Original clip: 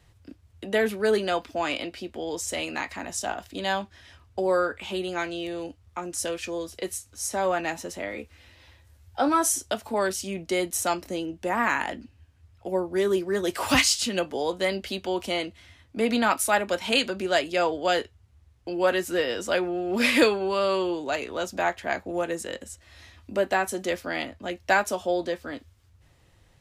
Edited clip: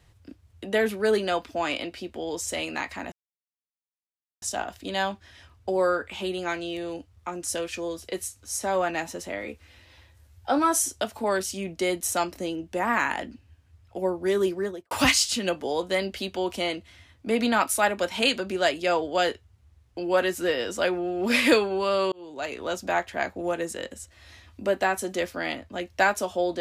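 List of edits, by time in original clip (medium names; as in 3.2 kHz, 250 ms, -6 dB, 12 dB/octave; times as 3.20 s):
3.12 s: insert silence 1.30 s
13.21–13.61 s: studio fade out
20.82–21.33 s: fade in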